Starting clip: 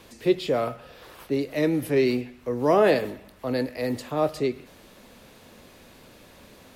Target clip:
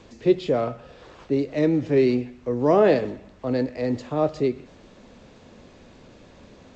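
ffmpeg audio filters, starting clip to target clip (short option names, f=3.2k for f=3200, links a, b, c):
-af "tiltshelf=f=860:g=4" -ar 16000 -c:a g722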